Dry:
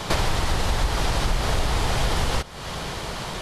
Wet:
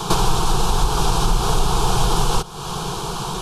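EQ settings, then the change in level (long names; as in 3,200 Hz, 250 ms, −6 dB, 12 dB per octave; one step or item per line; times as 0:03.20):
parametric band 4,600 Hz −3 dB 0.36 octaves
phaser with its sweep stopped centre 390 Hz, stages 8
+8.0 dB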